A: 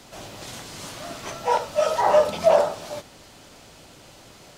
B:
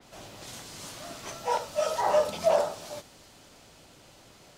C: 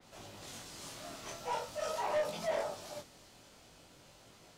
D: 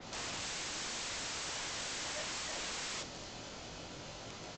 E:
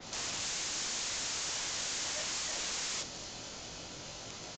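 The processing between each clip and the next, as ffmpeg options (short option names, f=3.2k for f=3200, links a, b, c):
-af "adynamicequalizer=threshold=0.00794:dfrequency=3900:dqfactor=0.7:tfrequency=3900:tqfactor=0.7:attack=5:release=100:ratio=0.375:range=2.5:mode=boostabove:tftype=highshelf,volume=-6.5dB"
-af "asoftclip=type=tanh:threshold=-25.5dB,flanger=delay=18:depth=7.8:speed=0.44,volume=-2dB"
-af "acompressor=threshold=-39dB:ratio=12,aresample=16000,aeval=exprs='(mod(251*val(0)+1,2)-1)/251':c=same,aresample=44100,volume=12dB"
-af "aresample=16000,aresample=44100,aemphasis=mode=production:type=50fm"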